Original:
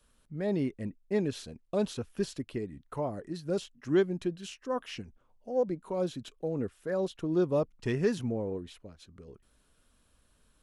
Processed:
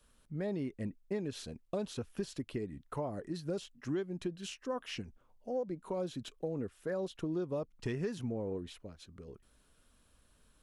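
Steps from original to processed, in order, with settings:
downward compressor 6 to 1, threshold −33 dBFS, peak gain reduction 12.5 dB

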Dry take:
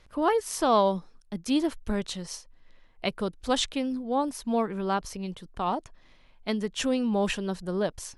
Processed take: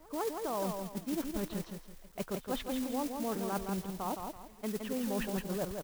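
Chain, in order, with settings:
Bessel low-pass filter 1,300 Hz, order 2
low-shelf EQ 240 Hz −2 dB
reversed playback
downward compressor 6 to 1, threshold −33 dBFS, peak gain reduction 13.5 dB
reversed playback
noise that follows the level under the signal 11 dB
tempo change 1.4×
echo ahead of the sound 154 ms −23.5 dB
feedback echo at a low word length 166 ms, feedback 35%, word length 10 bits, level −5 dB

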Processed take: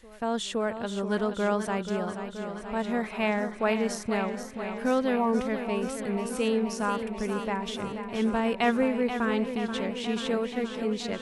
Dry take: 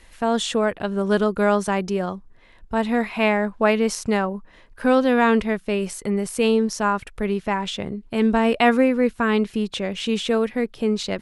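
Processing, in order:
time-frequency box erased 0:05.16–0:05.41, 1,200–8,500 Hz
backwards echo 516 ms −22.5 dB
feedback echo with a swinging delay time 480 ms, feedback 73%, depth 65 cents, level −9 dB
level −8 dB

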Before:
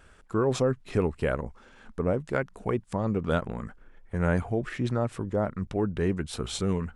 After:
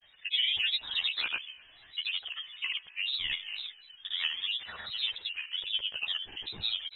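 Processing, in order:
voice inversion scrambler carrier 3,400 Hz
tuned comb filter 71 Hz, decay 1.7 s, harmonics all, mix 50%
multi-voice chorus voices 6, 0.41 Hz, delay 11 ms, depth 1.5 ms
granular cloud 100 ms, grains 20 per second, pitch spread up and down by 3 semitones
level +4 dB

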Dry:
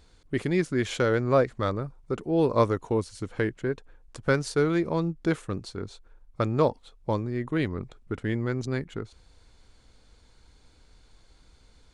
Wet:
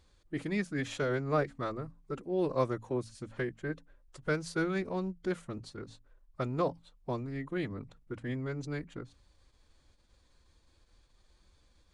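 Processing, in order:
mains-hum notches 50/100/150/200/250 Hz
phase-vocoder pitch shift with formants kept +2 semitones
level −7.5 dB

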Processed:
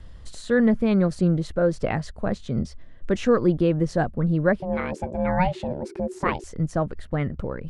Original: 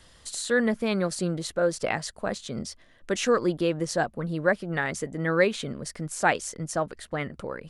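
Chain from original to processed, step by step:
RIAA equalisation playback
0:04.60–0:06.44: ring modulation 370 Hz

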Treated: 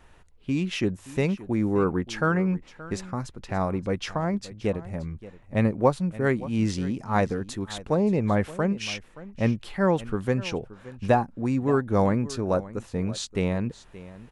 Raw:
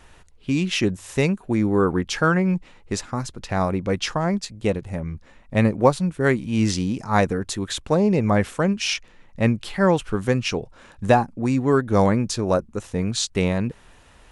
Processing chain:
parametric band 6,800 Hz −6 dB 2.6 octaves
on a send: single-tap delay 575 ms −17.5 dB
on the sum: level −4 dB

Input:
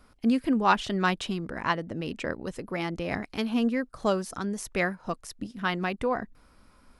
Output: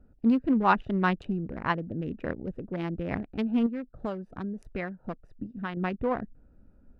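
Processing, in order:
adaptive Wiener filter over 41 samples
bass and treble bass +3 dB, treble −15 dB
0:03.66–0:05.77: downward compressor 3 to 1, threshold −32 dBFS, peak gain reduction 9.5 dB

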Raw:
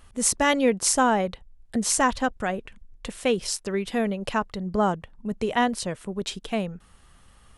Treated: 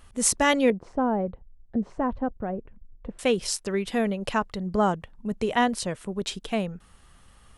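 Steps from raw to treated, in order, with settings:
0:00.70–0:03.19: Bessel low-pass filter 570 Hz, order 2

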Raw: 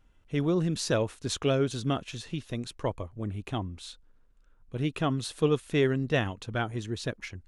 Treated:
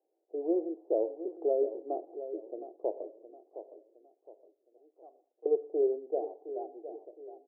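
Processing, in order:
fade-out on the ending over 1.79 s
Chebyshev band-pass filter 330–780 Hz, order 4
0:03.10–0:05.46: first difference
repeating echo 714 ms, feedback 37%, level −12 dB
reverb whose tail is shaped and stops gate 220 ms falling, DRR 11.5 dB

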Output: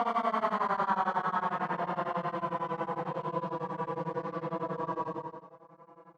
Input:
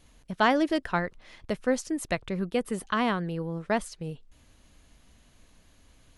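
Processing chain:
spectrum smeared in time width 278 ms
dead-zone distortion −52 dBFS
leveller curve on the samples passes 5
output level in coarse steps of 22 dB
extreme stretch with random phases 14×, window 0.05 s, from 0:03.07
resonant band-pass 920 Hz, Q 2.4
double-tracking delay 45 ms −13 dB
tremolo along a rectified sine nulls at 11 Hz
level +4.5 dB

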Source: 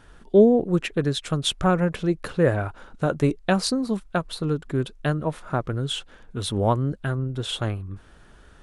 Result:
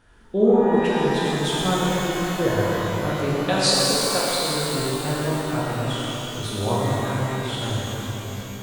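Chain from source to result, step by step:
0:03.43–0:04.51: octave-band graphic EQ 250/500/4,000/8,000 Hz −11/+8/+9/+10 dB
reverb with rising layers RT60 3.7 s, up +12 semitones, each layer −8 dB, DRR −7.5 dB
level −7.5 dB

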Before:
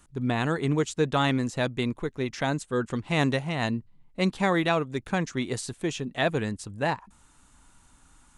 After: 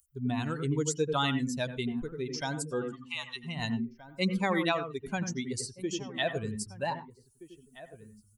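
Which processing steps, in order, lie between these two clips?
spectral dynamics exaggerated over time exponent 2
high-shelf EQ 4,000 Hz +12 dB
notch filter 1,700 Hz, Q 21
in parallel at −2 dB: downward compressor, threshold −36 dBFS, peak gain reduction 14 dB
0:02.84–0:03.44: on the sum: Chebyshev high-pass with heavy ripple 820 Hz, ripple 9 dB
0:05.45–0:06.19: high-frequency loss of the air 51 metres
slap from a distant wall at 270 metres, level −17 dB
on a send at −9 dB: convolution reverb RT60 0.15 s, pre-delay 87 ms
on the sum: one half of a high-frequency compander encoder only
level −4 dB

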